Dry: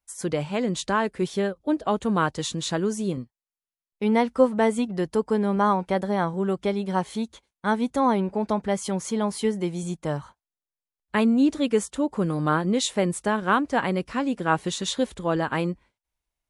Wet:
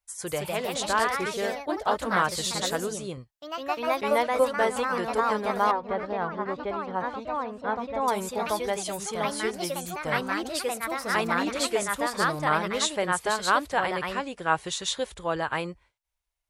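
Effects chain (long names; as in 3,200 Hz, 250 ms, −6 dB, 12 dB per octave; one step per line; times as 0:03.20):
parametric band 230 Hz −15 dB 1.3 octaves
delay with pitch and tempo change per echo 194 ms, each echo +2 semitones, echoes 3
0:05.71–0:08.08: head-to-tape spacing loss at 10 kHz 33 dB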